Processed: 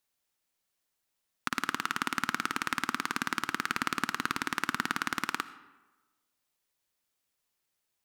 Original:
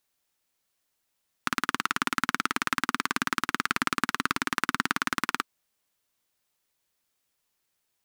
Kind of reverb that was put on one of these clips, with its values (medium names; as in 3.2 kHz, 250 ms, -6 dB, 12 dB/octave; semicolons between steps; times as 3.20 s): algorithmic reverb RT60 1.2 s, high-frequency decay 0.6×, pre-delay 40 ms, DRR 15 dB; trim -4 dB